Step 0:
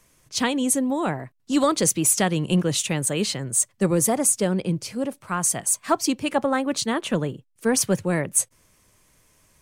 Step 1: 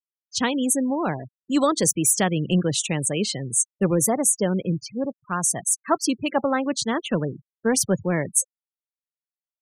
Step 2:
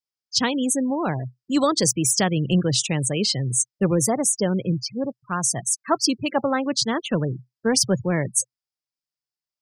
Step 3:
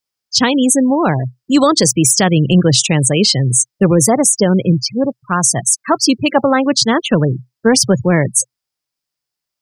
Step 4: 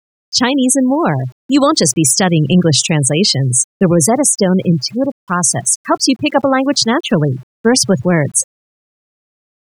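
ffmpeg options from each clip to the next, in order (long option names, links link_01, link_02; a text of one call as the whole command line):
ffmpeg -i in.wav -af "afftfilt=real='re*gte(hypot(re,im),0.0355)':imag='im*gte(hypot(re,im),0.0355)':win_size=1024:overlap=0.75" out.wav
ffmpeg -i in.wav -af "equalizer=frequency=125:width_type=o:width=0.33:gain=10,equalizer=frequency=5000:width_type=o:width=0.33:gain=12,equalizer=frequency=12500:width_type=o:width=0.33:gain=-11" out.wav
ffmpeg -i in.wav -af "alimiter=level_in=11.5dB:limit=-1dB:release=50:level=0:latency=1,volume=-1dB" out.wav
ffmpeg -i in.wav -af "aeval=exprs='val(0)*gte(abs(val(0)),0.00944)':channel_layout=same" out.wav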